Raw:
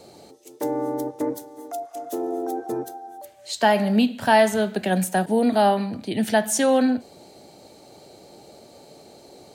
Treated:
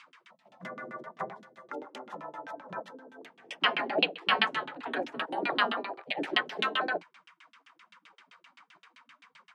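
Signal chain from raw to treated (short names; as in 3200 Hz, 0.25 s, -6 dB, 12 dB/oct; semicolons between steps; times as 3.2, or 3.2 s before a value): spectral gate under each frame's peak -20 dB weak; LFO low-pass saw down 7.7 Hz 220–3200 Hz; steep high-pass 170 Hz 36 dB/oct; gain +5.5 dB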